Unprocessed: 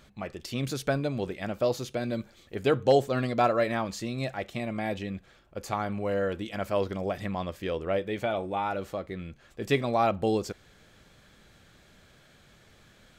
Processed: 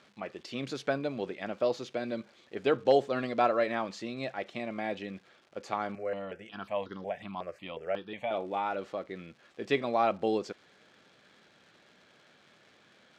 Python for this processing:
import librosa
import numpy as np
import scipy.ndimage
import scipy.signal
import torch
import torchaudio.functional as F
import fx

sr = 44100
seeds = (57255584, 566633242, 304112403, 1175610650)

y = fx.dmg_crackle(x, sr, seeds[0], per_s=280.0, level_db=-45.0)
y = fx.bandpass_edges(y, sr, low_hz=230.0, high_hz=4700.0)
y = fx.phaser_held(y, sr, hz=5.5, low_hz=930.0, high_hz=2400.0, at=(5.95, 8.31))
y = y * librosa.db_to_amplitude(-2.0)